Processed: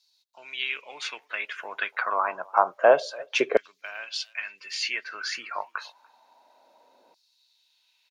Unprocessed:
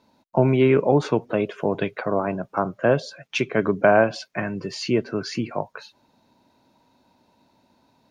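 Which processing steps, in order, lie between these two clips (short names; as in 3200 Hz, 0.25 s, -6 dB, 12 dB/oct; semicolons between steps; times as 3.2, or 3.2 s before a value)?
speakerphone echo 0.29 s, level -27 dB; harmoniser -4 st -17 dB; LFO high-pass saw down 0.28 Hz 450–4800 Hz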